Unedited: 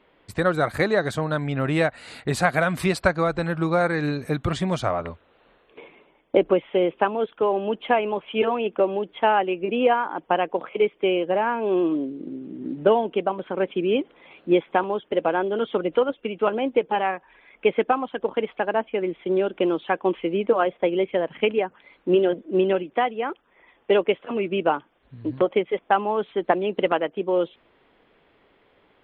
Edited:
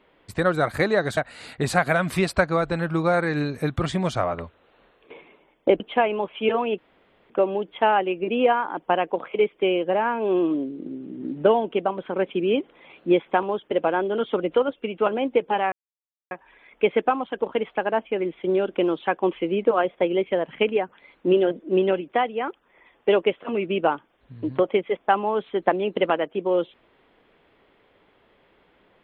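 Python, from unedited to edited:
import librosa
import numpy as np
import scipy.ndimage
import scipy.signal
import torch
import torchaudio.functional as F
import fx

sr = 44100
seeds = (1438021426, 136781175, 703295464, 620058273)

y = fx.edit(x, sr, fx.cut(start_s=1.17, length_s=0.67),
    fx.cut(start_s=6.47, length_s=1.26),
    fx.insert_room_tone(at_s=8.71, length_s=0.52),
    fx.insert_silence(at_s=17.13, length_s=0.59), tone=tone)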